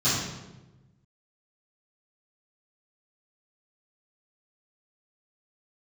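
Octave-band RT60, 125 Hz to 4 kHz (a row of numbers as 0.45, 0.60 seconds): 1.7, 1.5, 1.2, 0.95, 0.85, 0.75 seconds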